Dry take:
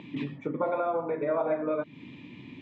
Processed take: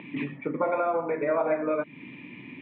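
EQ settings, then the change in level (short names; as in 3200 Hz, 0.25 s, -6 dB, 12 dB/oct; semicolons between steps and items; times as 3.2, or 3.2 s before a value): HPF 140 Hz; synth low-pass 2300 Hz, resonance Q 2.4; air absorption 110 m; +2.0 dB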